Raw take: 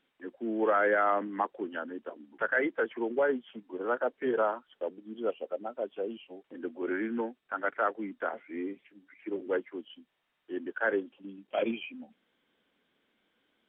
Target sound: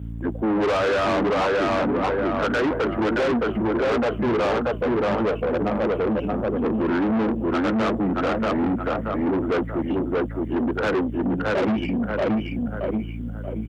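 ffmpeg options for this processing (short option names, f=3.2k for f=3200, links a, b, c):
-filter_complex "[0:a]asubboost=boost=4:cutoff=180,flanger=delay=0.2:depth=7.7:regen=-78:speed=0.83:shape=triangular,asplit=2[a][b];[b]aecho=0:1:629|1258|1887|2516|3145:0.668|0.234|0.0819|0.0287|0.01[c];[a][c]amix=inputs=2:normalize=0,aeval=exprs='0.168*sin(PI/2*2.82*val(0)/0.168)':c=same,aeval=exprs='val(0)+0.00891*(sin(2*PI*60*n/s)+sin(2*PI*2*60*n/s)/2+sin(2*PI*3*60*n/s)/3+sin(2*PI*4*60*n/s)/4+sin(2*PI*5*60*n/s)/5)':c=same,asetrate=41625,aresample=44100,atempo=1.05946,equalizer=f=2.6k:t=o:w=2.2:g=-14.5,aeval=exprs='(tanh(39.8*val(0)+0.35)-tanh(0.35))/39.8':c=same,asplit=2[d][e];[e]acompressor=threshold=-34dB:ratio=6,volume=-1dB[f];[d][f]amix=inputs=2:normalize=0,highpass=57,volume=8.5dB"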